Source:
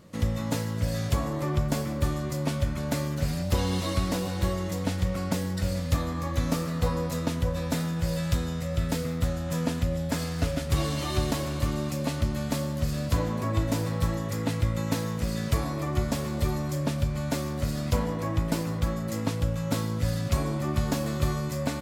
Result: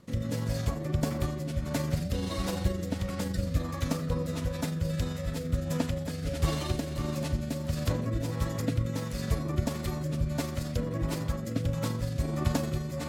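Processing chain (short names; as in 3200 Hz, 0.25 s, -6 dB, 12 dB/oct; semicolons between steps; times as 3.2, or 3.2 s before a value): rotary speaker horn 0.9 Hz; granular stretch 0.6×, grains 86 ms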